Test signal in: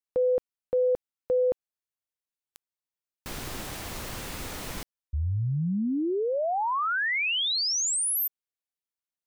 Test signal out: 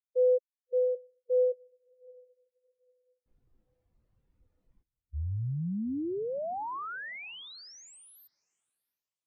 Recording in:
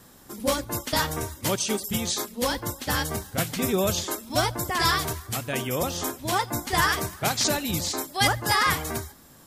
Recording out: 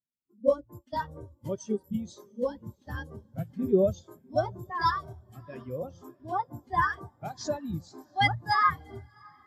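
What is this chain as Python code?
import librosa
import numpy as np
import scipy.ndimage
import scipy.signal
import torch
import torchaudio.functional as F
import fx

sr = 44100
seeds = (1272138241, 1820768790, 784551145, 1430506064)

y = fx.echo_diffused(x, sr, ms=688, feedback_pct=54, wet_db=-10.0)
y = fx.spectral_expand(y, sr, expansion=2.5)
y = F.gain(torch.from_numpy(y), -1.5).numpy()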